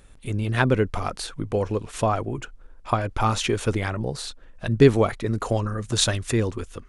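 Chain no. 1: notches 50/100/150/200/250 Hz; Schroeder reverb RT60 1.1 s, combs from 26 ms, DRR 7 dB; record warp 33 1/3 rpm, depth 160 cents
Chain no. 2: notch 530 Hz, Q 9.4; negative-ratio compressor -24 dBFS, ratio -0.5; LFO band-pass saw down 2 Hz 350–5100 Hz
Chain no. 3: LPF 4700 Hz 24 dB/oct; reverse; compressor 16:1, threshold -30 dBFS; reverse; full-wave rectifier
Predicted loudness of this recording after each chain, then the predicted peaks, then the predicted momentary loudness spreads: -23.5, -39.5, -40.0 LUFS; -2.5, -17.5, -20.0 dBFS; 14, 12, 4 LU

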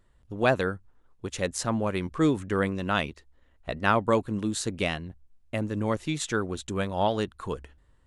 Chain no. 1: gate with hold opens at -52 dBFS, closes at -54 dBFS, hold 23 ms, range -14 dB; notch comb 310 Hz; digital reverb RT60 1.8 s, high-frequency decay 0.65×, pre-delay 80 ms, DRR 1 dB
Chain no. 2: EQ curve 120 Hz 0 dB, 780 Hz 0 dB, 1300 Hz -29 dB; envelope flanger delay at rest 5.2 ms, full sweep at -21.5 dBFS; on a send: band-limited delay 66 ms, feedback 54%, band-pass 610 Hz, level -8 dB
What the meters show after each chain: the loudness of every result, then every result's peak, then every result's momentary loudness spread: -28.0, -31.0 LUFS; -10.0, -14.5 dBFS; 10, 16 LU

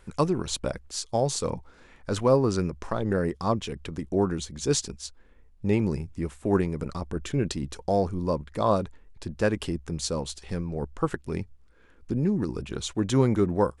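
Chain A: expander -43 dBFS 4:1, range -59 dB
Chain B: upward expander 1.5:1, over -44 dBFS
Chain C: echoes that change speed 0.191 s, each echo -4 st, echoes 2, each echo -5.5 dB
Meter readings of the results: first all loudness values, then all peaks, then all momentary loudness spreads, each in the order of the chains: -28.0, -31.0, -27.0 LUFS; -8.5, -9.0, -8.0 dBFS; 11, 15, 9 LU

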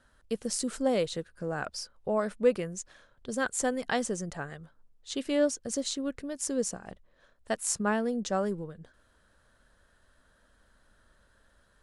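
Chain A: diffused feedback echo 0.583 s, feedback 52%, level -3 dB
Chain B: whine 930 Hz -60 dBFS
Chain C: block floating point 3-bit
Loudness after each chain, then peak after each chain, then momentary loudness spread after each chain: -30.0, -31.5, -31.0 LUFS; -12.0, -12.5, -12.0 dBFS; 12, 14, 12 LU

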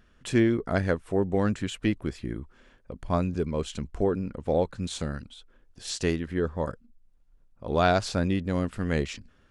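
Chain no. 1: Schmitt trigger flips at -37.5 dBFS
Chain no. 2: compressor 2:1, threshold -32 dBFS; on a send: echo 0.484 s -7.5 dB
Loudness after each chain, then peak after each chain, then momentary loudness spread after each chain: -31.0, -34.0 LUFS; -22.5, -15.5 dBFS; 7, 11 LU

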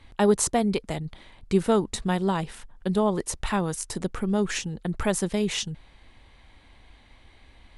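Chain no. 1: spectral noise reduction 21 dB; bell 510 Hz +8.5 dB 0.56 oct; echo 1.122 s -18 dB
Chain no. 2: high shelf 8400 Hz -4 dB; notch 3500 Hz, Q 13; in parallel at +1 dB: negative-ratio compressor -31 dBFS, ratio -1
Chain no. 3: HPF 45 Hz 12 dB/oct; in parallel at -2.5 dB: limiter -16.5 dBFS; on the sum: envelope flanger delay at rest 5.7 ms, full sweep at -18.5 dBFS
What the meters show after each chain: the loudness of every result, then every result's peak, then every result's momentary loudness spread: -27.0, -23.0, -24.0 LUFS; -9.0, -5.5, -7.5 dBFS; 18, 6, 12 LU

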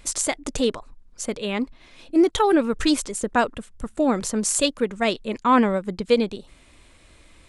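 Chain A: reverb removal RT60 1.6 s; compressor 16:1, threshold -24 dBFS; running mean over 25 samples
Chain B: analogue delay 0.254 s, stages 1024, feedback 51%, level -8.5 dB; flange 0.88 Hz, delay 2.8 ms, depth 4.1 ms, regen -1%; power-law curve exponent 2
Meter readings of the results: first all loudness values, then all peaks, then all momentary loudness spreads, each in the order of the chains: -33.5, -32.5 LUFS; -16.5, -5.5 dBFS; 7, 20 LU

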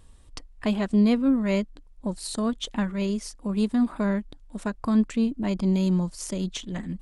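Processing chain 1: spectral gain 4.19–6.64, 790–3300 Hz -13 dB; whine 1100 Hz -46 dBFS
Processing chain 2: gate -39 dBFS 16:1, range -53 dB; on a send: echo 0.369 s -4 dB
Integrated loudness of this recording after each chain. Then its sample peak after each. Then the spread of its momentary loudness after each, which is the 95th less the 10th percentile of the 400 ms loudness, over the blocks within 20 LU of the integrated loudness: -26.0, -25.0 LUFS; -11.5, -9.5 dBFS; 13, 10 LU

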